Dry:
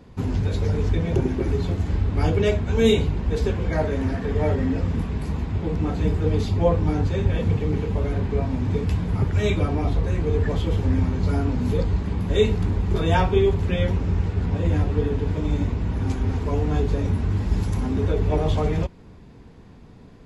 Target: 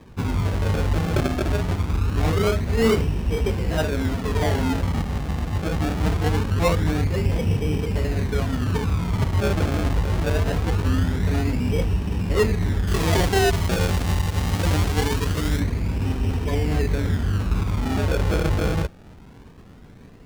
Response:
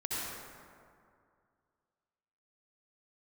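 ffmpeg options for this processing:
-filter_complex "[0:a]acrusher=samples=31:mix=1:aa=0.000001:lfo=1:lforange=31:lforate=0.23,asettb=1/sr,asplit=3[a][b][c];[a]atrim=end=12.874[d];[b]atrim=start=12.87:end=15.6,asetpts=PTS-STARTPTS,afade=t=in:d=0.004:c=qsin,afade=t=out:st=2.726:d=0.004:c=qsin,highshelf=f=2.7k:g=10[e];[c]atrim=start=15.596[f];[d][e]acrossfade=d=0.004:c1=hsin:c2=qsin[g];[g][f]acrossfade=d=0.004:c1=qsin:c2=hsin,asoftclip=type=tanh:threshold=-11.5dB,highshelf=f=6.2k:g=-7.5,volume=1dB"

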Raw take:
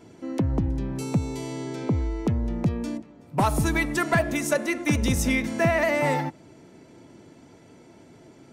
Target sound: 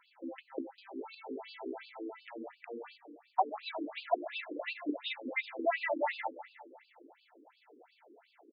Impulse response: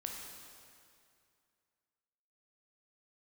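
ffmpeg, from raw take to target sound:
-filter_complex "[0:a]lowshelf=f=300:g=-9,asplit=2[a][b];[b]alimiter=limit=-23dB:level=0:latency=1:release=35,volume=-1.5dB[c];[a][c]amix=inputs=2:normalize=0,equalizer=f=770:t=o:w=0.31:g=8.5,bandreject=f=50:t=h:w=6,bandreject=f=100:t=h:w=6,bandreject=f=150:t=h:w=6,bandreject=f=200:t=h:w=6,bandreject=f=250:t=h:w=6,aecho=1:1:205|410|615|820|1025:0.178|0.0889|0.0445|0.0222|0.0111,afftfilt=real='re*between(b*sr/1024,330*pow(3600/330,0.5+0.5*sin(2*PI*2.8*pts/sr))/1.41,330*pow(3600/330,0.5+0.5*sin(2*PI*2.8*pts/sr))*1.41)':imag='im*between(b*sr/1024,330*pow(3600/330,0.5+0.5*sin(2*PI*2.8*pts/sr))/1.41,330*pow(3600/330,0.5+0.5*sin(2*PI*2.8*pts/sr))*1.41)':win_size=1024:overlap=0.75,volume=-6.5dB"

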